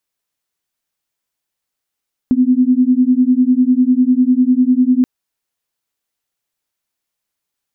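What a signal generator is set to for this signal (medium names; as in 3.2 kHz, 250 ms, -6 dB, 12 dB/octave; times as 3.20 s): beating tones 248 Hz, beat 10 Hz, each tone -12 dBFS 2.73 s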